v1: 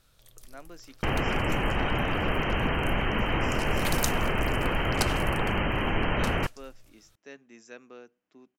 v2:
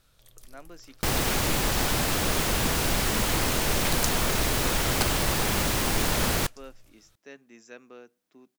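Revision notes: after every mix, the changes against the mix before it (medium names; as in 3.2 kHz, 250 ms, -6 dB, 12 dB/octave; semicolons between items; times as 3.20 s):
second sound: remove brick-wall FIR low-pass 3.2 kHz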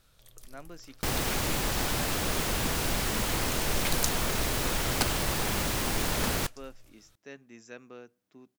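speech: remove high-pass 200 Hz 12 dB/octave; second sound -4.0 dB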